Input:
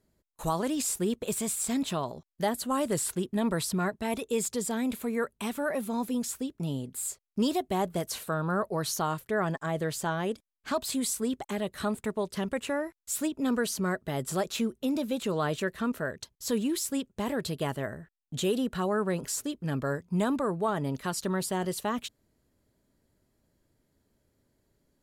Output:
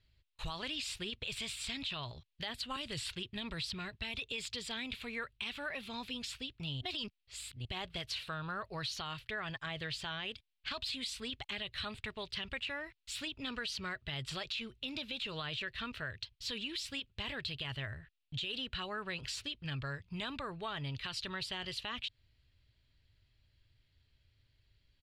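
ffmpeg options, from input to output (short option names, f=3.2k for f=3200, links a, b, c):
-filter_complex "[0:a]asettb=1/sr,asplit=3[a][b][c];[a]atrim=end=2.764[d];[b]atrim=start=2.76:end=4.32,asetpts=PTS-STARTPTS,afade=t=in:d=0.004:c=qsin,afade=t=out:st=1.556:d=0.004:c=qsin,acrossover=split=430|3000[e][f][g];[f]acompressor=threshold=-36dB:ratio=6:attack=3.2:release=140:knee=2.83:detection=peak[h];[e][h][g]amix=inputs=3:normalize=0[i];[c]atrim=start=4.316[j];[d][i]acrossfade=d=0.004:c1=hsin:c2=qsin[k];[k][j]acrossfade=d=0.004:c1=qsin:c2=hsin,asplit=3[l][m][n];[l]atrim=end=6.812[o];[m]atrim=start=6.808:end=7.652,asetpts=PTS-STARTPTS,areverse[p];[n]atrim=start=7.648[q];[o][p]acrossfade=d=0.004:c1=hsin:c2=hsin[r];[r][q]acrossfade=d=0.004:c1=hsin:c2=hsin,firequalizer=gain_entry='entry(110,0);entry(180,-20);entry(510,-19);entry(2700,6);entry(4400,1);entry(6300,-16);entry(12000,-27)':delay=0.05:min_phase=1,alimiter=level_in=7.5dB:limit=-24dB:level=0:latency=1:release=17,volume=-7.5dB,acompressor=threshold=-43dB:ratio=2.5,volume=5.5dB"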